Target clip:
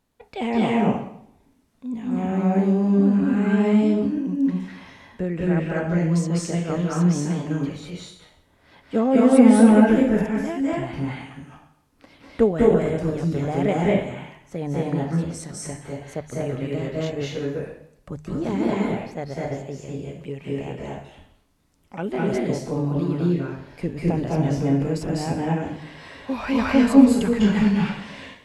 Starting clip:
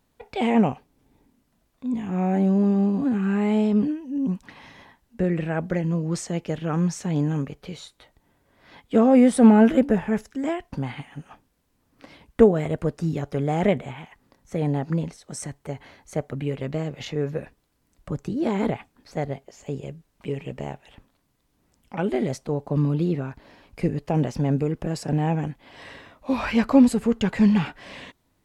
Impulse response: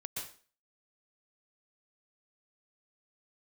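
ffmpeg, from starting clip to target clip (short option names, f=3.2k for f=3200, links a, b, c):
-filter_complex "[0:a]bandreject=f=50.68:t=h:w=4,bandreject=f=101.36:t=h:w=4,bandreject=f=152.04:t=h:w=4[a];[1:a]atrim=start_sample=2205,asetrate=26460,aresample=44100[b];[a][b]afir=irnorm=-1:irlink=0,volume=-1dB"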